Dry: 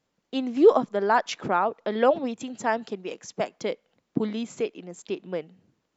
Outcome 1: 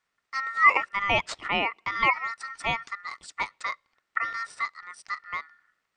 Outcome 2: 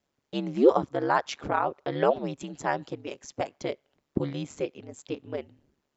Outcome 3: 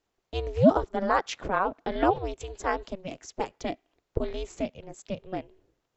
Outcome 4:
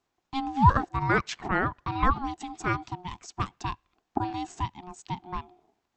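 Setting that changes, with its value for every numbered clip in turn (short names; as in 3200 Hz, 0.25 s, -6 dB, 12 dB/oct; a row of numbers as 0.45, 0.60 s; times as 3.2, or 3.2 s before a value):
ring modulator, frequency: 1600, 71, 190, 540 Hz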